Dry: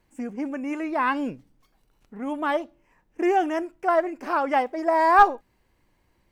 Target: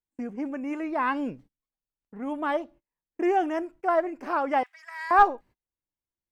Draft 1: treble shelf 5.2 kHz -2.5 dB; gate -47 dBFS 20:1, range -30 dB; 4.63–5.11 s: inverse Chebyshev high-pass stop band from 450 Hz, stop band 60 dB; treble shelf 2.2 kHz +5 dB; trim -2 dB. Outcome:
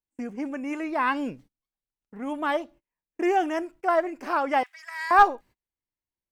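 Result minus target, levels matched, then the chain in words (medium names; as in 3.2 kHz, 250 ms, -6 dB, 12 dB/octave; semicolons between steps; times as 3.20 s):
4 kHz band +4.5 dB
treble shelf 5.2 kHz -2.5 dB; gate -47 dBFS 20:1, range -30 dB; 4.63–5.11 s: inverse Chebyshev high-pass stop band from 450 Hz, stop band 60 dB; treble shelf 2.2 kHz -3.5 dB; trim -2 dB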